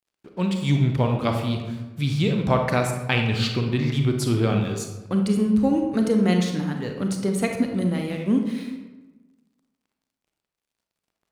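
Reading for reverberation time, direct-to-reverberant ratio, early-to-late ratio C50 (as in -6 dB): 1.2 s, 3.5 dB, 4.5 dB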